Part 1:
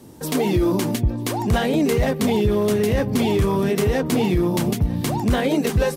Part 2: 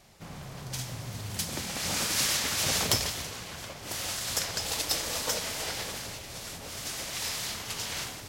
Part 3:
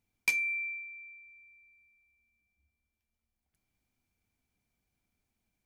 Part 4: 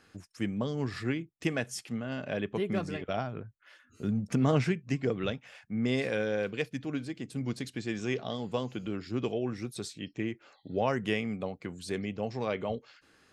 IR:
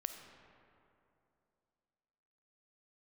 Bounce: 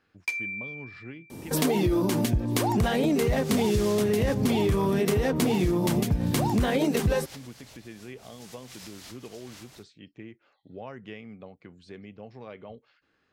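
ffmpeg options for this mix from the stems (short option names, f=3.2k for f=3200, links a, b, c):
-filter_complex "[0:a]adelay=1300,volume=2.5dB[a];[1:a]acontrast=73,adelay=1550,volume=-11.5dB[b];[2:a]highpass=320,highshelf=f=6k:g=-8,volume=-0.5dB[c];[3:a]lowpass=3.9k,acompressor=threshold=-34dB:ratio=1.5,volume=-8dB,asplit=2[d][e];[e]apad=whole_len=433920[f];[b][f]sidechaincompress=threshold=-53dB:ratio=8:attack=36:release=183[g];[a][g][c][d]amix=inputs=4:normalize=0,acompressor=threshold=-21dB:ratio=6"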